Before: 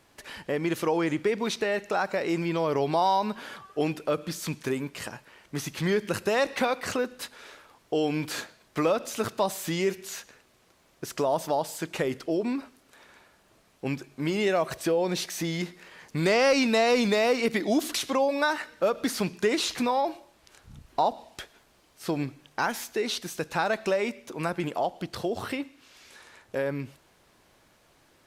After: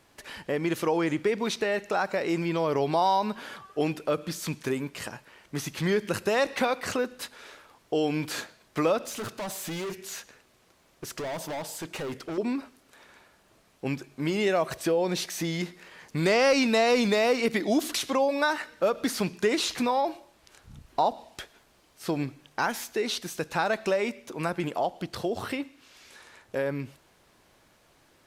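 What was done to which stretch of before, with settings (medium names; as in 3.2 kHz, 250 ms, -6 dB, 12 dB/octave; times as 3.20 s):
9.05–12.38 s: hard clipper -31.5 dBFS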